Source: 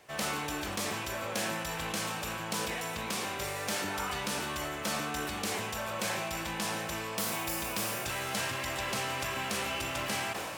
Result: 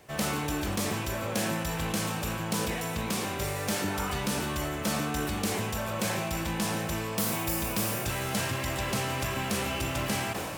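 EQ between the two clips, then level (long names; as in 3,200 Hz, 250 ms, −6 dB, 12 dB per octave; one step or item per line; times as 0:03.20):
low-shelf EQ 380 Hz +11 dB
high-shelf EQ 9,600 Hz +6.5 dB
0.0 dB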